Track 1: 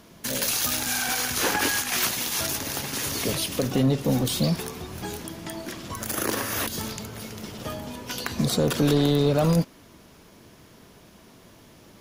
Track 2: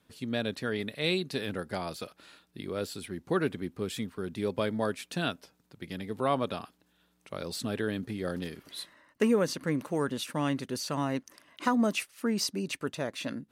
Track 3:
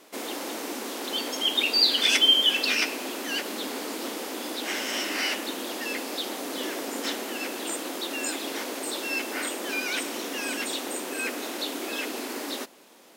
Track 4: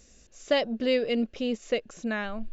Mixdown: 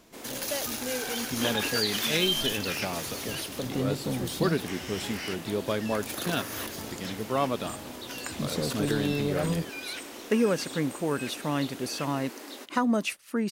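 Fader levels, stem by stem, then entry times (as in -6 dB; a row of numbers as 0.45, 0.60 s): -8.5, +1.0, -9.5, -10.0 dB; 0.00, 1.10, 0.00, 0.00 s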